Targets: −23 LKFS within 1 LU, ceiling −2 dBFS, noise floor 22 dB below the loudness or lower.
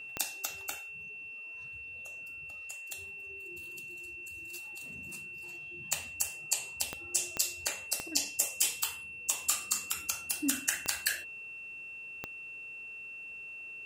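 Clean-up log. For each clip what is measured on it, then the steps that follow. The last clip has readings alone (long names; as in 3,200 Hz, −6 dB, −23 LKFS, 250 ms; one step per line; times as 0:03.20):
number of clicks 6; interfering tone 2,700 Hz; level of the tone −42 dBFS; integrated loudness −35.0 LKFS; sample peak −9.5 dBFS; target loudness −23.0 LKFS
→ click removal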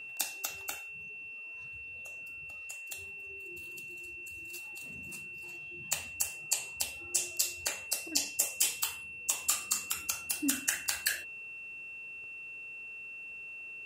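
number of clicks 0; interfering tone 2,700 Hz; level of the tone −42 dBFS
→ notch filter 2,700 Hz, Q 30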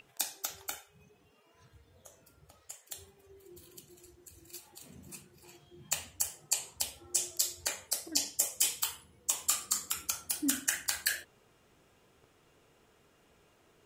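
interfering tone none found; integrated loudness −32.5 LKFS; sample peak −10.0 dBFS; target loudness −23.0 LKFS
→ level +9.5 dB
brickwall limiter −2 dBFS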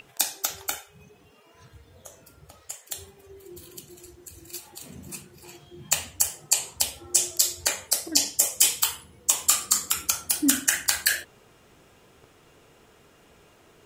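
integrated loudness −23.5 LKFS; sample peak −2.0 dBFS; background noise floor −57 dBFS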